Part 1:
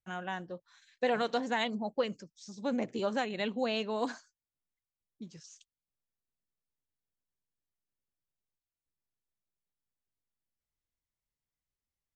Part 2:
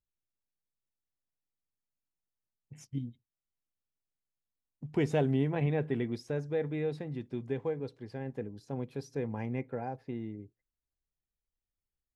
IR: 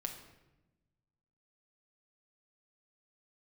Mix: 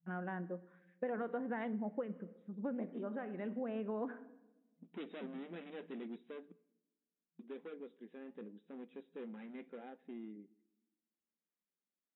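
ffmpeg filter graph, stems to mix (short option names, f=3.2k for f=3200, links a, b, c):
-filter_complex "[0:a]lowpass=f=1.6k:w=0.5412,lowpass=f=1.6k:w=1.3066,volume=-0.5dB,asplit=2[a][b];[b]volume=-8.5dB[c];[1:a]asoftclip=type=hard:threshold=-33dB,flanger=delay=2.6:depth=8:regen=-76:speed=0.79:shape=sinusoidal,volume=-3.5dB,asplit=3[d][e][f];[d]atrim=end=6.52,asetpts=PTS-STARTPTS,afade=t=out:st=6.516:d=0.004:c=hsin[g];[e]atrim=start=6.52:end=7.39,asetpts=PTS-STARTPTS,volume=0[h];[f]atrim=start=7.39,asetpts=PTS-STARTPTS,afade=t=in:d=0.004:c=hsin[i];[g][h][i]concat=n=3:v=0:a=1,asplit=3[j][k][l];[k]volume=-14.5dB[m];[l]apad=whole_len=536067[n];[a][n]sidechaincompress=threshold=-57dB:ratio=8:attack=16:release=1010[o];[2:a]atrim=start_sample=2205[p];[c][m]amix=inputs=2:normalize=0[q];[q][p]afir=irnorm=-1:irlink=0[r];[o][j][r]amix=inputs=3:normalize=0,afftfilt=real='re*between(b*sr/4096,170,3900)':imag='im*between(b*sr/4096,170,3900)':win_size=4096:overlap=0.75,equalizer=f=900:w=1:g=-8.5,acompressor=threshold=-36dB:ratio=6"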